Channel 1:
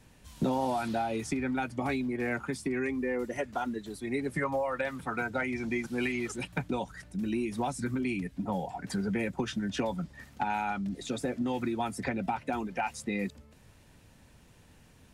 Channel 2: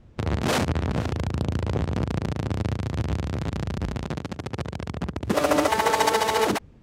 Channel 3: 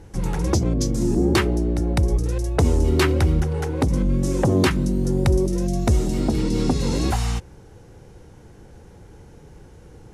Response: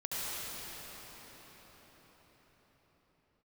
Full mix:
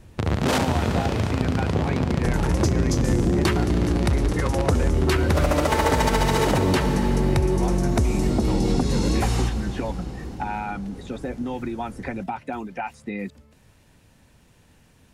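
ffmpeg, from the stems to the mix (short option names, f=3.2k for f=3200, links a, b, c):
-filter_complex "[0:a]acrossover=split=2800[a][b];[b]acompressor=threshold=-54dB:ratio=4:attack=1:release=60[c];[a][c]amix=inputs=2:normalize=0,volume=2dB[d];[1:a]volume=1dB,asplit=2[e][f];[f]volume=-9dB[g];[2:a]adelay=2100,volume=0dB,asplit=2[h][i];[i]volume=-14.5dB[j];[3:a]atrim=start_sample=2205[k];[g][j]amix=inputs=2:normalize=0[l];[l][k]afir=irnorm=-1:irlink=0[m];[d][e][h][m]amix=inputs=4:normalize=0,acompressor=threshold=-16dB:ratio=6"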